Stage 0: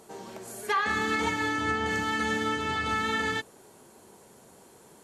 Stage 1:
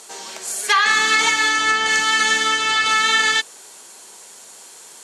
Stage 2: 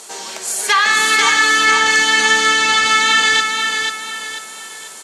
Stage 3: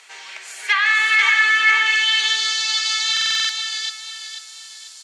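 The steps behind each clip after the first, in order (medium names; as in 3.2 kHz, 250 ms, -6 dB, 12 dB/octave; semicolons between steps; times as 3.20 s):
frequency weighting ITU-R 468; trim +8 dB
in parallel at -0.5 dB: peak limiter -14 dBFS, peak gain reduction 10 dB; on the sum: feedback delay 491 ms, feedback 39%, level -5 dB; trim -1 dB
band-pass sweep 2.2 kHz -> 4.7 kHz, 1.75–2.54 s; buffer glitch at 3.12 s, samples 2048, times 7; trim +2 dB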